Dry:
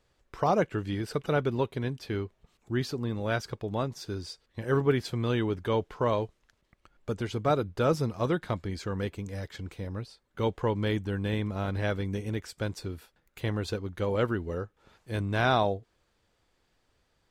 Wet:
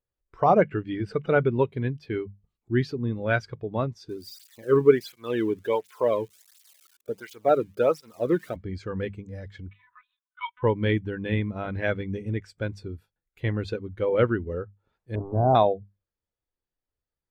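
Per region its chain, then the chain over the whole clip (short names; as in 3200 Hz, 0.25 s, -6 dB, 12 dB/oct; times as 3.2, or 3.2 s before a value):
0.52–1.59 high shelf 8600 Hz -8 dB + upward compressor, threshold -35 dBFS
4.09–8.56 switching spikes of -29.5 dBFS + tape flanging out of phase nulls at 1.4 Hz, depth 1.6 ms
9.69–10.63 brick-wall FIR high-pass 860 Hz + comb 4 ms, depth 61% + LPC vocoder at 8 kHz pitch kept
15.15–15.55 delta modulation 32 kbps, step -25.5 dBFS + inverse Chebyshev low-pass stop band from 2300 Hz, stop band 50 dB + short-mantissa float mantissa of 6-bit
whole clip: notches 50/100/150/200 Hz; dynamic EQ 2200 Hz, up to +7 dB, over -50 dBFS, Q 1.3; spectral expander 1.5:1; gain +7 dB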